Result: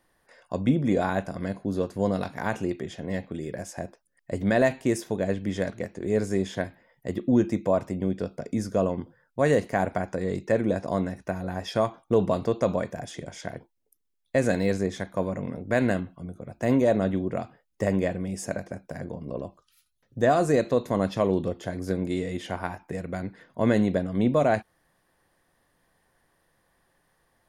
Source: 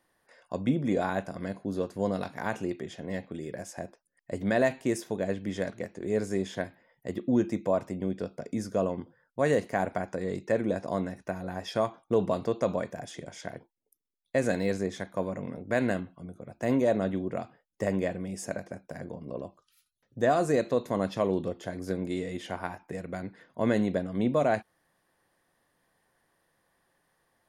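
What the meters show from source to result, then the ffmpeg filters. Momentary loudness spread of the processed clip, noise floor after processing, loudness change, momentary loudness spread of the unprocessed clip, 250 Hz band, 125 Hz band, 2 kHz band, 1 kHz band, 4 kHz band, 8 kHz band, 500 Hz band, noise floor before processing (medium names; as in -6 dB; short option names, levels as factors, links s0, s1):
14 LU, -73 dBFS, +3.5 dB, 14 LU, +4.0 dB, +5.5 dB, +3.0 dB, +3.0 dB, +3.0 dB, +3.0 dB, +3.0 dB, -78 dBFS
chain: -af "lowshelf=f=78:g=10.5,volume=1.41"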